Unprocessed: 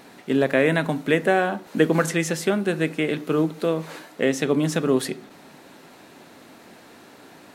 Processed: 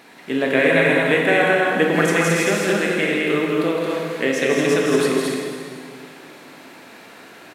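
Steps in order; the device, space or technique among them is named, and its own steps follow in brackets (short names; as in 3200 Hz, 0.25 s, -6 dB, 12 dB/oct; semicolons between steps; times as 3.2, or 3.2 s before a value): stadium PA (HPF 170 Hz 6 dB/oct; bell 2200 Hz +5.5 dB 1.3 oct; loudspeakers at several distances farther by 56 m -5 dB, 76 m -3 dB, 97 m -10 dB; reverb RT60 2.3 s, pre-delay 16 ms, DRR 0.5 dB); gain -1.5 dB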